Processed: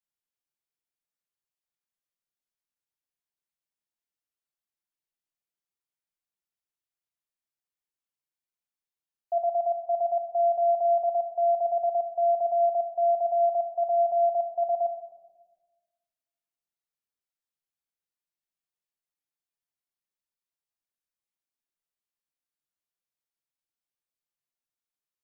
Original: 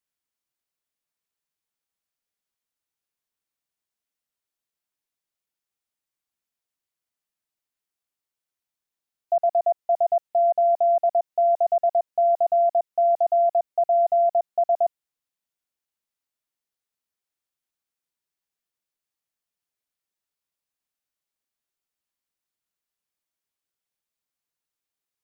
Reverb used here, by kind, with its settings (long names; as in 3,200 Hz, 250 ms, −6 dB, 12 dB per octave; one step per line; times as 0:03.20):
rectangular room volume 790 cubic metres, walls mixed, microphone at 0.86 metres
level −9 dB